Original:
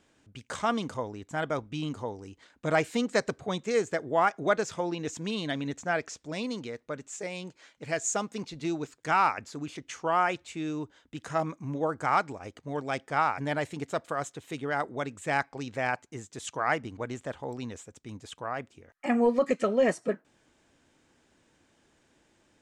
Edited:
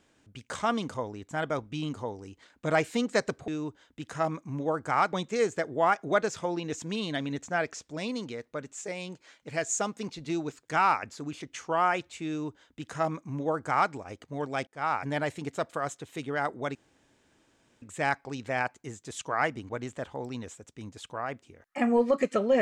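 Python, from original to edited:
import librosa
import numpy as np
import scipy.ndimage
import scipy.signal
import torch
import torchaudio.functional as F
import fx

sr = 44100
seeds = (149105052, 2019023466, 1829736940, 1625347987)

y = fx.edit(x, sr, fx.duplicate(start_s=10.63, length_s=1.65, to_s=3.48),
    fx.fade_in_span(start_s=13.02, length_s=0.3),
    fx.insert_room_tone(at_s=15.1, length_s=1.07), tone=tone)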